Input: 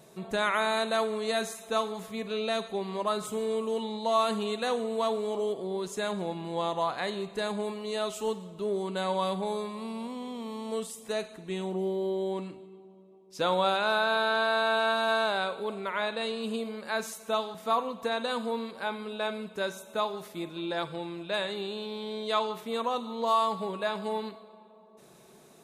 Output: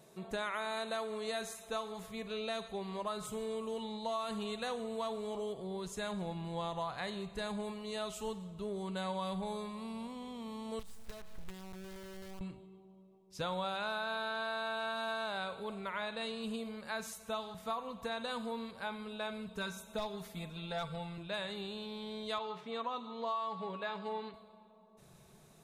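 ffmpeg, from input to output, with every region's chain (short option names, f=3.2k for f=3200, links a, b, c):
-filter_complex "[0:a]asettb=1/sr,asplit=3[a][b][c];[a]atrim=end=10.794[d];[b]atrim=start=10.79:end=12.41,asetpts=PTS-STARTPTS,afade=t=in:d=0.004:c=qsin,afade=t=out:st=1.616:d=0.004:c=qsin,lowpass=f=2.8k:p=1,acrusher=bits=6:dc=4:mix=0:aa=0.000001,acompressor=threshold=-39dB:ratio=8:attack=3.2:release=140:knee=1:detection=peak[e];[c]atrim=start=12.406[f];[d][e]acrossfade=d=0.004:c1=hsin:c2=qsin[g];[g][f]acrossfade=d=0.004:c1=qsin:c2=hsin,asettb=1/sr,asplit=3[h][i][j];[h]atrim=end=19.484[k];[i]atrim=start=19.48:end=21.18,asetpts=PTS-STARTPTS,afade=t=in:d=0.004:c=qsin,afade=t=out:st=1.696:d=0.004:c=qsin,aecho=1:1:4.4:0.69,atrim=end_sample=74970,asoftclip=type=hard:threshold=-21.5dB[l];[j]atrim=start=21.176[m];[k][l]acrossfade=d=0.004:c1=hsin:c2=qsin[n];[n][m]acrossfade=d=0.004:c1=qsin:c2=hsin,asettb=1/sr,asplit=3[o][p][q];[o]atrim=end=22.384[r];[p]atrim=start=22.38:end=24.34,asetpts=PTS-STARTPTS,afade=t=in:d=0.004:c=qsin,afade=t=out:st=1.956:d=0.004:c=qsin,highpass=170,lowpass=4.3k,aecho=1:1:7.1:0.34,atrim=end_sample=86436[s];[q]atrim=start=24.336[t];[r][s]acrossfade=d=0.004:c1=hsin:c2=qsin[u];[u][t]acrossfade=d=0.004:c1=qsin:c2=hsin,asubboost=boost=9:cutoff=100,acompressor=threshold=-28dB:ratio=6,volume=-5.5dB"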